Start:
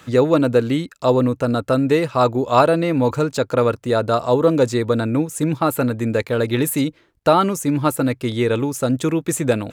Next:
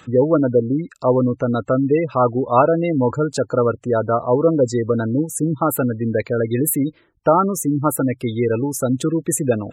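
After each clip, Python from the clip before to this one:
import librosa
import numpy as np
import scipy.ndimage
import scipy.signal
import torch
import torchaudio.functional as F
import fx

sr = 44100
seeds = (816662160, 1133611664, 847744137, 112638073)

y = fx.spec_gate(x, sr, threshold_db=-20, keep='strong')
y = fx.high_shelf(y, sr, hz=7700.0, db=6.5)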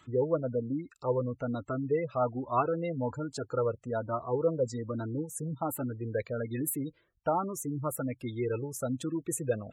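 y = fx.comb_cascade(x, sr, direction='rising', hz=1.2)
y = F.gain(torch.from_numpy(y), -9.0).numpy()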